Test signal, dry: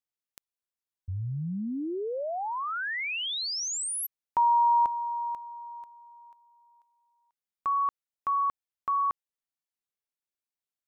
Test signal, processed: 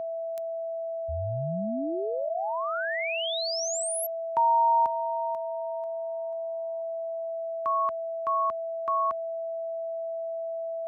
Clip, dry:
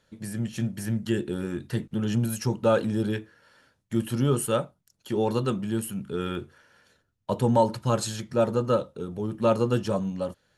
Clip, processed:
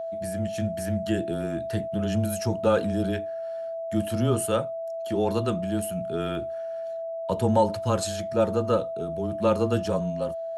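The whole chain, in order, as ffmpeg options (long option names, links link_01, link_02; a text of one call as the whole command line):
ffmpeg -i in.wav -af "afreqshift=-16,aeval=exprs='val(0)+0.0316*sin(2*PI*660*n/s)':channel_layout=same,highpass=frequency=59:poles=1" out.wav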